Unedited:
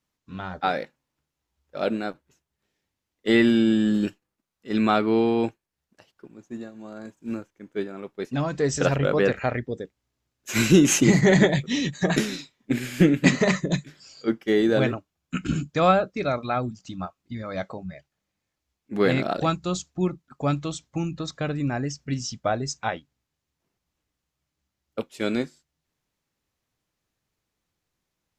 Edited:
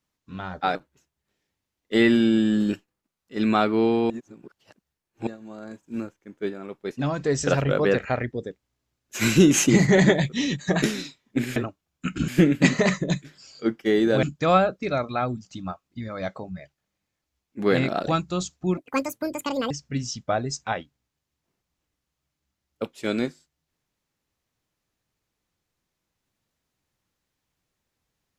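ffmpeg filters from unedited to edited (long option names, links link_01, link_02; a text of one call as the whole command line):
ffmpeg -i in.wav -filter_complex "[0:a]asplit=9[link_01][link_02][link_03][link_04][link_05][link_06][link_07][link_08][link_09];[link_01]atrim=end=0.752[link_10];[link_02]atrim=start=2.088:end=5.442[link_11];[link_03]atrim=start=5.438:end=6.612,asetpts=PTS-STARTPTS,areverse[link_12];[link_04]atrim=start=6.608:end=12.902[link_13];[link_05]atrim=start=14.848:end=15.572[link_14];[link_06]atrim=start=12.898:end=14.852[link_15];[link_07]atrim=start=15.568:end=20.114[link_16];[link_08]atrim=start=20.11:end=21.87,asetpts=PTS-STARTPTS,asetrate=82908,aresample=44100,atrim=end_sample=41285,asetpts=PTS-STARTPTS[link_17];[link_09]atrim=start=21.866[link_18];[link_10][link_11]acrossfade=duration=0.004:curve1=hsin:curve2=hsin[link_19];[link_19][link_12]acrossfade=duration=0.004:curve1=hsin:curve2=hsin[link_20];[link_20][link_13]acrossfade=duration=0.004:curve1=hsin:curve2=hsin[link_21];[link_21][link_14]acrossfade=duration=0.004:curve1=hsin:curve2=hsin[link_22];[link_22][link_15]acrossfade=duration=0.004:curve1=hsin:curve2=hsin[link_23];[link_23][link_16]acrossfade=duration=0.004:curve1=hsin:curve2=hsin[link_24];[link_24][link_17]acrossfade=duration=0.004:curve1=hsin:curve2=hsin[link_25];[link_25][link_18]acrossfade=duration=0.004:curve1=hsin:curve2=hsin" out.wav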